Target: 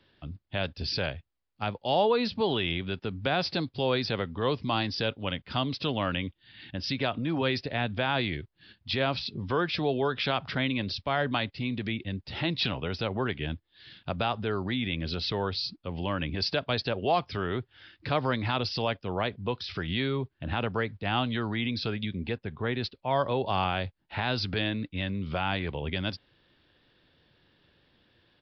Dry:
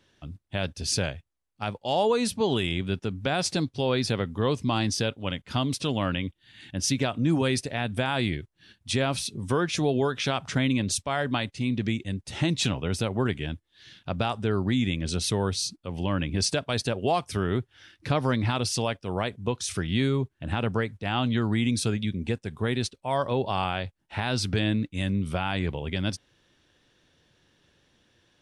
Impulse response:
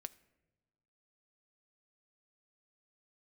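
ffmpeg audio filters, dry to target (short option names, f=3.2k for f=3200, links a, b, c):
-filter_complex "[0:a]asettb=1/sr,asplit=3[a][b][c];[a]atrim=end=22.374[d];[b]atrim=start=22.37:end=22.84,asetpts=PTS-STARTPTS,afade=t=in:d=0.004:c=qsin,afade=t=out:st=0.466:d=0.004:c=qsin,bass=f=250:g=1,treble=f=4k:g=-12[e];[c]atrim=start=22.836[f];[d][e]acrossfade=d=0.004:c1=hsin:c2=qsin[g];[g][f]acrossfade=d=0.004:c1=qsin:c2=hsin,acrossover=split=430|1100[h][i][j];[h]alimiter=level_in=2dB:limit=-24dB:level=0:latency=1:release=136,volume=-2dB[k];[k][i][j]amix=inputs=3:normalize=0,aresample=11025,aresample=44100"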